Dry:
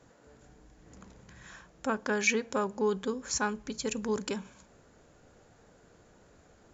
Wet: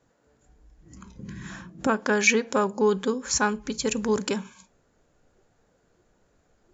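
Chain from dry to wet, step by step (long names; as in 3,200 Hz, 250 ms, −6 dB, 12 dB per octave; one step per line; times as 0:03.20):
0:01.19–0:01.87: parametric band 200 Hz +13 dB 1.8 octaves
noise reduction from a noise print of the clip's start 14 dB
level +7 dB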